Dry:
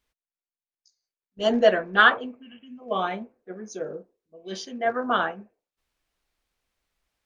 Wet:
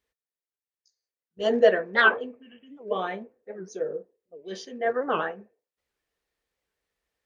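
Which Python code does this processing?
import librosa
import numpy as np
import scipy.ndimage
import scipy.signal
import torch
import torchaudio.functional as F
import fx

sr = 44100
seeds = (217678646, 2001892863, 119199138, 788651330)

y = scipy.signal.sosfilt(scipy.signal.butter(2, 45.0, 'highpass', fs=sr, output='sos'), x)
y = fx.small_body(y, sr, hz=(460.0, 1800.0), ring_ms=25, db=10)
y = fx.record_warp(y, sr, rpm=78.0, depth_cents=250.0)
y = y * 10.0 ** (-5.0 / 20.0)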